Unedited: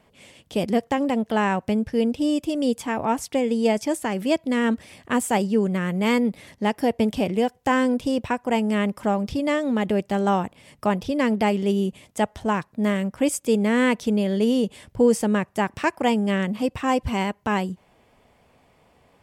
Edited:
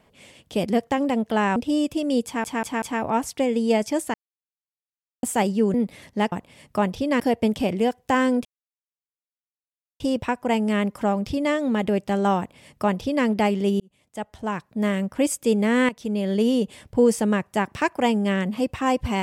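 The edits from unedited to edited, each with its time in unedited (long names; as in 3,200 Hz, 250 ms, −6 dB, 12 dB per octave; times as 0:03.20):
0:01.56–0:02.08: remove
0:02.77: stutter 0.19 s, 4 plays
0:04.09–0:05.18: silence
0:05.69–0:06.19: remove
0:08.02: splice in silence 1.55 s
0:10.40–0:11.28: duplicate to 0:06.77
0:11.82–0:12.99: fade in
0:13.91–0:14.36: fade in, from −14 dB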